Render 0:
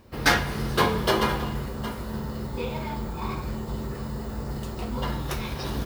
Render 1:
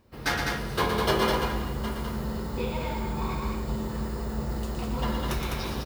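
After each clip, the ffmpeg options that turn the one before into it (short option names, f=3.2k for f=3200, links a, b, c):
-af "dynaudnorm=f=260:g=3:m=7dB,aecho=1:1:116.6|204.1:0.501|0.631,volume=-8.5dB"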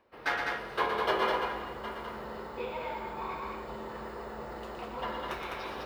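-filter_complex "[0:a]acrossover=split=370 3200:gain=0.112 1 0.158[a][b][c];[a][b][c]amix=inputs=3:normalize=0,areverse,acompressor=mode=upward:threshold=-35dB:ratio=2.5,areverse,volume=-1.5dB"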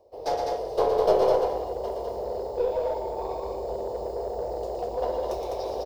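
-filter_complex "[0:a]firequalizer=gain_entry='entry(110,0);entry(170,-17);entry(450,6);entry(670,6);entry(1400,-29);entry(5100,1);entry(9700,-5);entry(16000,-3)':delay=0.05:min_phase=1,asplit=2[a][b];[b]aeval=exprs='clip(val(0),-1,0.0178)':c=same,volume=-4.5dB[c];[a][c]amix=inputs=2:normalize=0,volume=4dB"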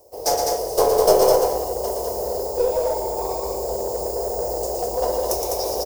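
-af "aexciter=amount=12:drive=3.3:freq=5.5k,volume=5.5dB"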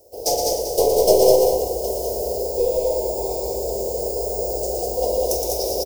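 -filter_complex "[0:a]asuperstop=centerf=1400:order=4:qfactor=0.64,asplit=2[a][b];[b]aecho=0:1:46.65|186.6:0.282|0.398[c];[a][c]amix=inputs=2:normalize=0,volume=1dB"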